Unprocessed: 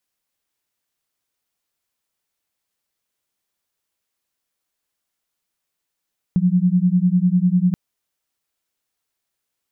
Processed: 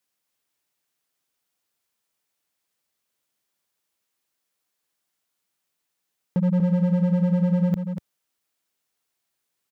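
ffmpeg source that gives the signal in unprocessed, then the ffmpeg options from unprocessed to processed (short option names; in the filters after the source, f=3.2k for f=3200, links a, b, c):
-f lavfi -i "aevalsrc='0.15*(sin(2*PI*175*t)+sin(2*PI*185*t))':d=1.38:s=44100"
-filter_complex "[0:a]highpass=93,asoftclip=type=hard:threshold=-18dB,asplit=2[a][b];[b]aecho=0:1:241:0.398[c];[a][c]amix=inputs=2:normalize=0"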